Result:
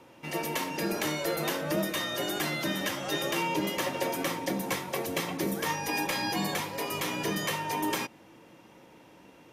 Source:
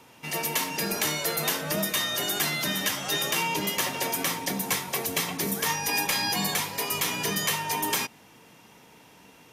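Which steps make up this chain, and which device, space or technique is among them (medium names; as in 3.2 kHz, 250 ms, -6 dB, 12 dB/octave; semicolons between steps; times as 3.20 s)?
inside a helmet (treble shelf 3.5 kHz -9 dB; small resonant body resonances 330/540 Hz, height 10 dB, ringing for 70 ms); trim -1.5 dB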